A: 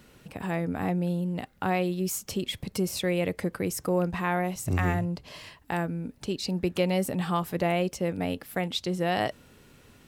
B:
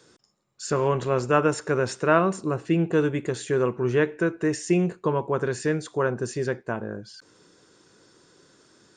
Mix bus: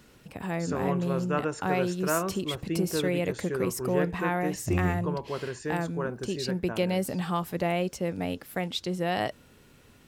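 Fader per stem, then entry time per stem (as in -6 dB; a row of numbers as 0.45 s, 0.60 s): -1.5 dB, -8.5 dB; 0.00 s, 0.00 s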